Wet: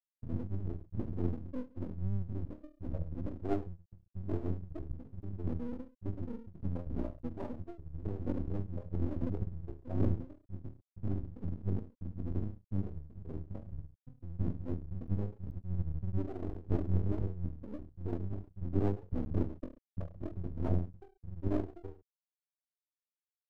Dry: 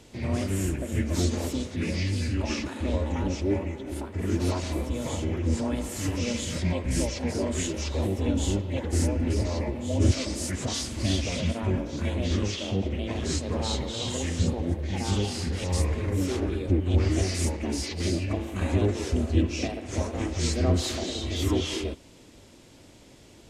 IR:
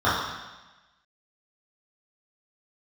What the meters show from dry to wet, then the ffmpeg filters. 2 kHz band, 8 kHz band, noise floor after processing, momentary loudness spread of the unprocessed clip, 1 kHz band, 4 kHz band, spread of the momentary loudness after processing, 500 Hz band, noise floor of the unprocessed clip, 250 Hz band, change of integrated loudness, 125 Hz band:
under -20 dB, under -40 dB, under -85 dBFS, 5 LU, -14.0 dB, under -35 dB, 12 LU, -12.5 dB, -52 dBFS, -10.5 dB, -11.0 dB, -9.5 dB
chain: -af "afftfilt=real='re*gte(hypot(re,im),0.282)':imag='im*gte(hypot(re,im),0.282)':win_size=1024:overlap=0.75,aecho=1:1:20|43|69.45|99.87|134.8:0.631|0.398|0.251|0.158|0.1,aeval=exprs='max(val(0),0)':c=same,volume=0.562"

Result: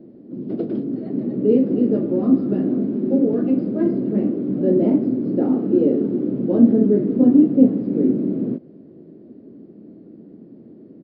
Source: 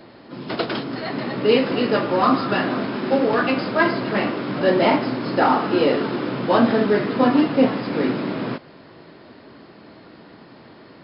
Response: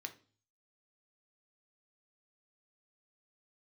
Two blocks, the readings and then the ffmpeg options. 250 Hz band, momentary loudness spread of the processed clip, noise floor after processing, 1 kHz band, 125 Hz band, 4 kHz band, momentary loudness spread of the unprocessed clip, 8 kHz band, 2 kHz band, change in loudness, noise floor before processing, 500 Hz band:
+5.0 dB, 11 LU, -44 dBFS, under -15 dB, +2.5 dB, under -25 dB, 10 LU, no reading, under -25 dB, +1.5 dB, -46 dBFS, -1.5 dB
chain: -af "firequalizer=gain_entry='entry(100,0);entry(200,12);entry(360,9);entry(930,-20);entry(4500,-26)':delay=0.05:min_phase=1,volume=0.531"

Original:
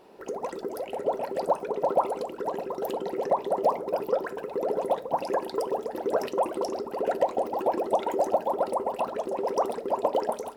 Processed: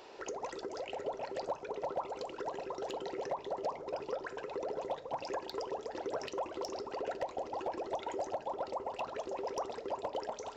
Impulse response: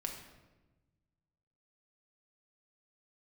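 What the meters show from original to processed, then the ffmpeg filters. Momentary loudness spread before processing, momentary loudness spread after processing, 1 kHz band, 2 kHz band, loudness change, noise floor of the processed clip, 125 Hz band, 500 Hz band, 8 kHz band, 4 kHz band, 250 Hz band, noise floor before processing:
6 LU, 3 LU, -11.0 dB, -5.0 dB, -11.0 dB, -50 dBFS, -8.5 dB, -11.5 dB, -4.5 dB, -2.5 dB, -11.5 dB, -41 dBFS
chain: -filter_complex "[0:a]tiltshelf=f=1400:g=-5,aresample=16000,aresample=44100,acrossover=split=190[s0][s1];[s1]acompressor=threshold=0.00562:ratio=2.5[s2];[s0][s2]amix=inputs=2:normalize=0,equalizer=f=200:w=2.2:g=-11.5,areverse,acompressor=mode=upward:threshold=0.00251:ratio=2.5,areverse,volume=39.8,asoftclip=hard,volume=0.0251,volume=1.58"

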